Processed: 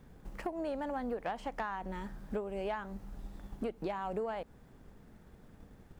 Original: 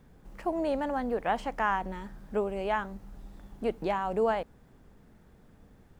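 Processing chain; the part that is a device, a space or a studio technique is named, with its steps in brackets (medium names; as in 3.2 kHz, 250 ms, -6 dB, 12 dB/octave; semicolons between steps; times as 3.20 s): drum-bus smash (transient shaper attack +5 dB, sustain 0 dB; compression 12:1, threshold -32 dBFS, peak gain reduction 12.5 dB; saturation -25.5 dBFS, distortion -22 dB)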